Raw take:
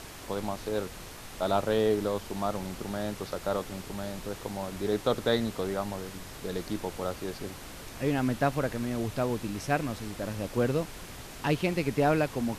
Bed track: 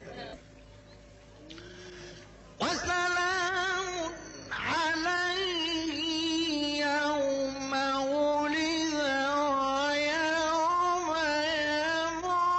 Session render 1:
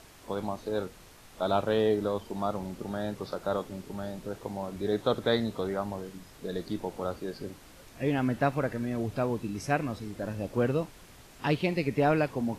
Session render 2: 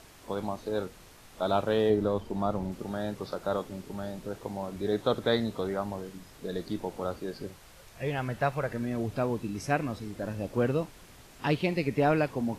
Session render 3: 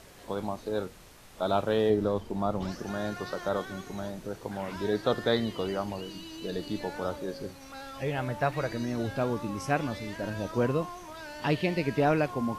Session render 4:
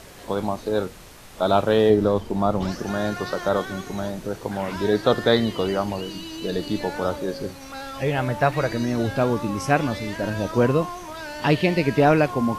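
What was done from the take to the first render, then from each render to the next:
noise print and reduce 9 dB
1.9–2.72 tilt -1.5 dB/oct; 7.47–8.7 bell 270 Hz -12 dB 0.64 oct
add bed track -14 dB
gain +8 dB

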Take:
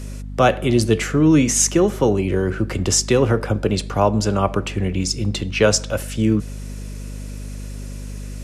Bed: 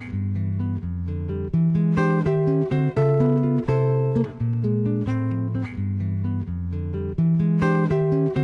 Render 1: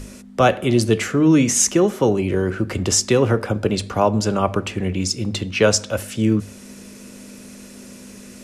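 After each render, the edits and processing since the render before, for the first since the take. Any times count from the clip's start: notches 50/100/150 Hz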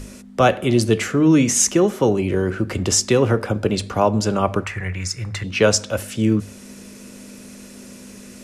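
4.64–5.44 EQ curve 150 Hz 0 dB, 230 Hz -18 dB, 1900 Hz +11 dB, 3100 Hz -8 dB, 6000 Hz -3 dB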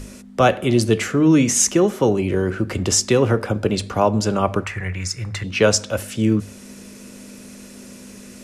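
nothing audible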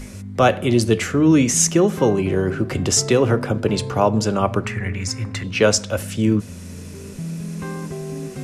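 add bed -9.5 dB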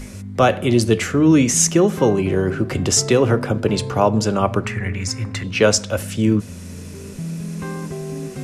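gain +1 dB; limiter -3 dBFS, peak gain reduction 2.5 dB

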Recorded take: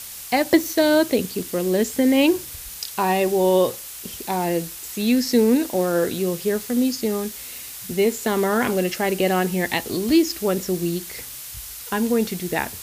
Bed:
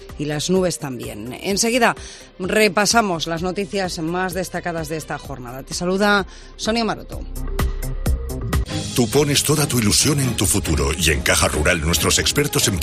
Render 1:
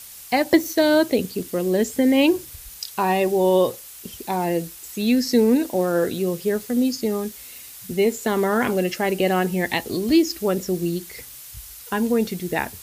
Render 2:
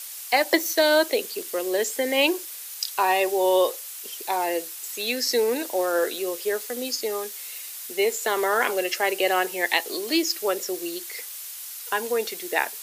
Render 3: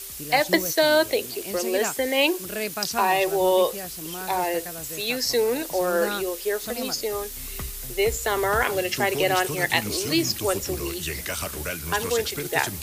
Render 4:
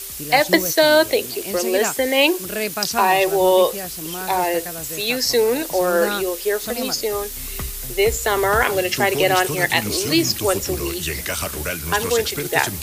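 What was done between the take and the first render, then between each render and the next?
denoiser 6 dB, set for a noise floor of -36 dBFS
HPF 370 Hz 24 dB/oct; tilt shelf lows -3.5 dB, about 780 Hz
add bed -14.5 dB
gain +5 dB; limiter -2 dBFS, peak gain reduction 2.5 dB

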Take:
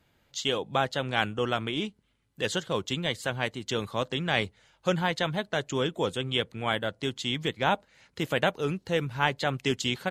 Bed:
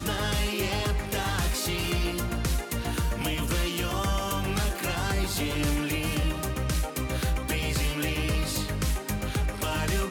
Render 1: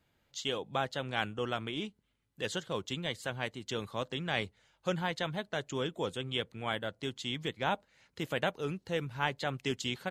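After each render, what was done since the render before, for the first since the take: gain -6.5 dB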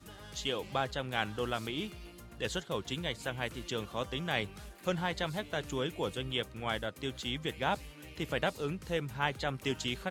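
add bed -21.5 dB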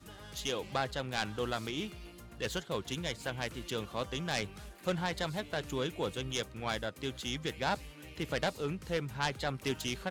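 self-modulated delay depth 0.16 ms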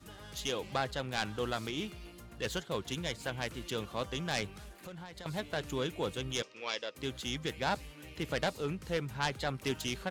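4.56–5.26 compressor 5:1, threshold -44 dBFS; 6.42–6.95 speaker cabinet 480–6600 Hz, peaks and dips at 480 Hz +5 dB, 740 Hz -10 dB, 1500 Hz -7 dB, 2700 Hz +7 dB, 5400 Hz +8 dB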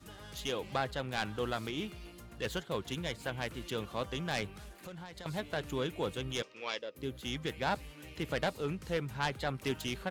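dynamic EQ 6100 Hz, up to -5 dB, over -51 dBFS, Q 0.95; 6.79–7.23 spectral gain 610–10000 Hz -7 dB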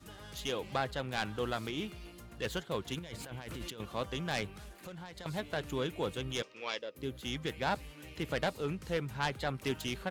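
2.99–3.8 negative-ratio compressor -44 dBFS

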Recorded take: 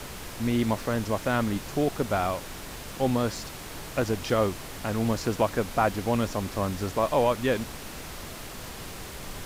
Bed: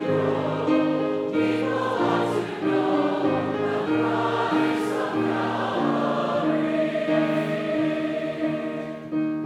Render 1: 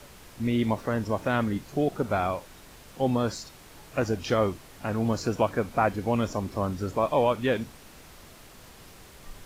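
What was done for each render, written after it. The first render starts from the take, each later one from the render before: noise print and reduce 10 dB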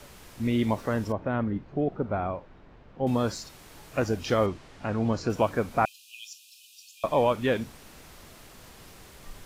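1.12–3.07 tape spacing loss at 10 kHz 43 dB; 4.46–5.3 air absorption 83 m; 5.85–7.04 brick-wall FIR high-pass 2400 Hz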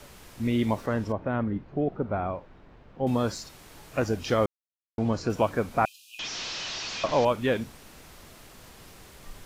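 0.86–2.27 high shelf 8300 Hz -12 dB; 4.46–4.98 mute; 6.19–7.25 delta modulation 32 kbps, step -27.5 dBFS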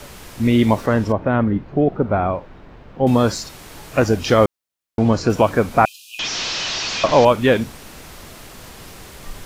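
gain +10.5 dB; limiter -2 dBFS, peak gain reduction 2 dB

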